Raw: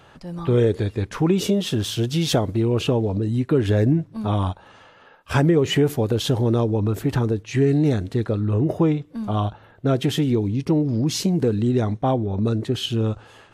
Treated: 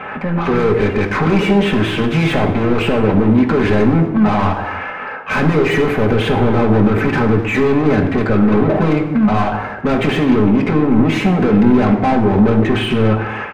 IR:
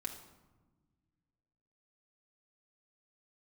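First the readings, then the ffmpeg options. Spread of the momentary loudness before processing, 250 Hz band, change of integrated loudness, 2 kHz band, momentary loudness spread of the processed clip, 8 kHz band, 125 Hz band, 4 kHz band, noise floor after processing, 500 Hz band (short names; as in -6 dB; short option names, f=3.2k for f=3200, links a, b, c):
6 LU, +8.5 dB, +7.0 dB, +15.0 dB, 5 LU, n/a, +3.5 dB, +2.5 dB, -26 dBFS, +7.0 dB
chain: -filter_complex "[0:a]highshelf=f=3.3k:t=q:w=3:g=-13.5,asplit=2[a][b];[b]highpass=f=720:p=1,volume=34dB,asoftclip=type=tanh:threshold=-5.5dB[c];[a][c]amix=inputs=2:normalize=0,lowpass=f=1k:p=1,volume=-6dB,acontrast=80,asplit=2[d][e];[e]adelay=250,highpass=300,lowpass=3.4k,asoftclip=type=hard:threshold=-12.5dB,volume=-19dB[f];[d][f]amix=inputs=2:normalize=0[g];[1:a]atrim=start_sample=2205,afade=t=out:st=0.36:d=0.01,atrim=end_sample=16317[h];[g][h]afir=irnorm=-1:irlink=0,volume=-5dB"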